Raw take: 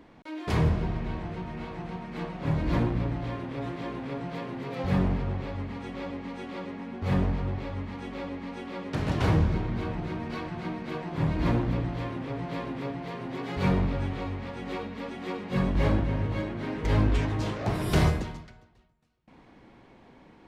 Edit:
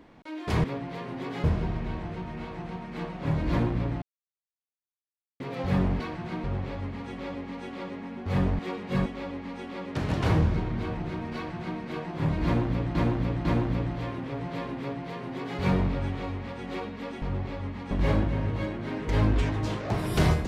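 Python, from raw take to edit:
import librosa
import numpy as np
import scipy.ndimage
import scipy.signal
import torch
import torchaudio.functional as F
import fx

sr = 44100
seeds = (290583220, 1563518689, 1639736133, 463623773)

y = fx.edit(x, sr, fx.silence(start_s=3.22, length_s=1.38),
    fx.swap(start_s=7.35, length_s=0.69, other_s=15.2, other_length_s=0.47),
    fx.duplicate(start_s=10.33, length_s=0.44, to_s=5.2),
    fx.repeat(start_s=11.43, length_s=0.5, count=3),
    fx.duplicate(start_s=12.77, length_s=0.8, to_s=0.64), tone=tone)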